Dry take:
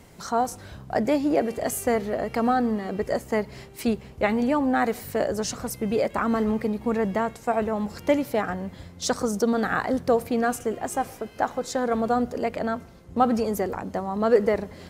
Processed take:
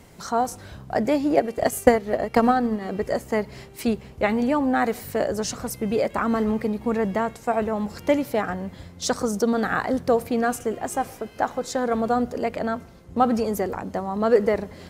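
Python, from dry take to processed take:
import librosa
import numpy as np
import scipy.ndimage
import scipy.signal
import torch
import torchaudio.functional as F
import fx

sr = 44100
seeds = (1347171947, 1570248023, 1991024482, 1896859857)

y = fx.transient(x, sr, attack_db=10, sustain_db=-6, at=(1.36, 2.8), fade=0.02)
y = y * librosa.db_to_amplitude(1.0)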